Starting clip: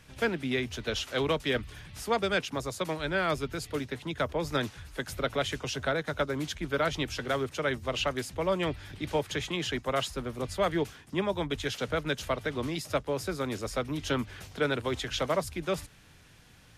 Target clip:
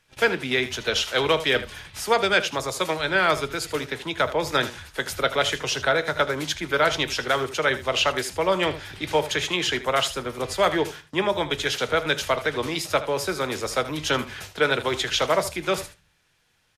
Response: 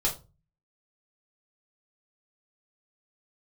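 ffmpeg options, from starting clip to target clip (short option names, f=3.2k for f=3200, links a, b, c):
-filter_complex "[0:a]agate=range=-17dB:threshold=-46dB:ratio=16:detection=peak,lowshelf=f=380:g=-10.5,aecho=1:1:78:0.188,asplit=2[a][b];[1:a]atrim=start_sample=2205,lowpass=8.2k[c];[b][c]afir=irnorm=-1:irlink=0,volume=-18.5dB[d];[a][d]amix=inputs=2:normalize=0,volume=9dB"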